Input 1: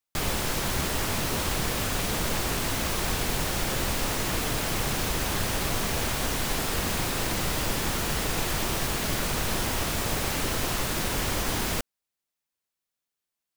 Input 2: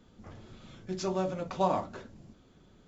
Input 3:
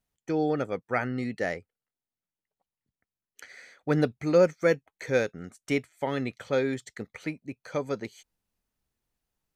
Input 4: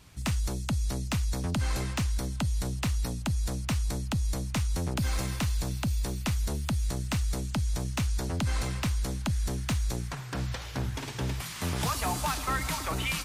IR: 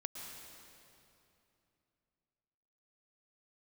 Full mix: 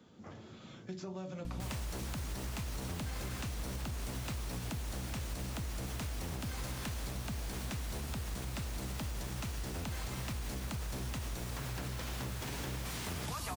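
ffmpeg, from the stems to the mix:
-filter_complex "[0:a]adelay=1450,volume=-7dB[link_01];[1:a]acrossover=split=190|2000[link_02][link_03][link_04];[link_02]acompressor=threshold=-42dB:ratio=4[link_05];[link_03]acompressor=threshold=-44dB:ratio=4[link_06];[link_04]acompressor=threshold=-56dB:ratio=4[link_07];[link_05][link_06][link_07]amix=inputs=3:normalize=0,volume=0.5dB[link_08];[3:a]aeval=exprs='val(0)+0.0126*(sin(2*PI*60*n/s)+sin(2*PI*2*60*n/s)/2+sin(2*PI*3*60*n/s)/3+sin(2*PI*4*60*n/s)/4+sin(2*PI*5*60*n/s)/5)':channel_layout=same,adelay=1450,volume=-0.5dB,asplit=2[link_09][link_10];[link_10]volume=-11dB[link_11];[link_01][link_08]amix=inputs=2:normalize=0,highpass=110,alimiter=level_in=8.5dB:limit=-24dB:level=0:latency=1:release=158,volume=-8.5dB,volume=0dB[link_12];[link_09]alimiter=level_in=8dB:limit=-24dB:level=0:latency=1,volume=-8dB,volume=0dB[link_13];[4:a]atrim=start_sample=2205[link_14];[link_11][link_14]afir=irnorm=-1:irlink=0[link_15];[link_12][link_13][link_15]amix=inputs=3:normalize=0,acompressor=threshold=-36dB:ratio=6"

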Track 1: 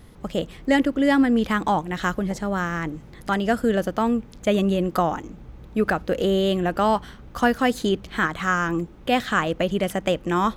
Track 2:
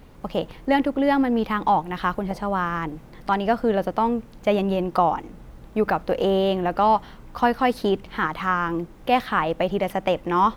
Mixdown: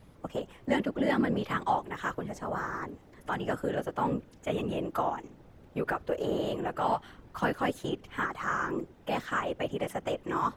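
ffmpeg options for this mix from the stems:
ffmpeg -i stem1.wav -i stem2.wav -filter_complex "[0:a]volume=-5.5dB[link_01];[1:a]highshelf=frequency=6000:gain=-5.5,acrossover=split=130|3000[link_02][link_03][link_04];[link_02]acompressor=threshold=-37dB:ratio=4[link_05];[link_05][link_03][link_04]amix=inputs=3:normalize=0,alimiter=limit=-15.5dB:level=0:latency=1:release=154,volume=-4dB[link_06];[link_01][link_06]amix=inputs=2:normalize=0,afftfilt=real='hypot(re,im)*cos(2*PI*random(0))':imag='hypot(re,im)*sin(2*PI*random(1))':win_size=512:overlap=0.75" out.wav

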